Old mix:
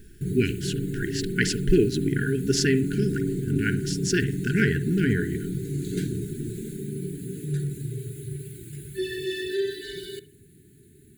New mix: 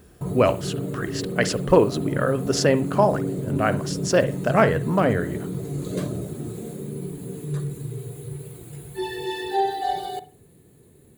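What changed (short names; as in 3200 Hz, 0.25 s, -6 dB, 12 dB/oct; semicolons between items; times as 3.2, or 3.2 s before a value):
speech: add HPF 59 Hz; master: remove brick-wall FIR band-stop 440–1400 Hz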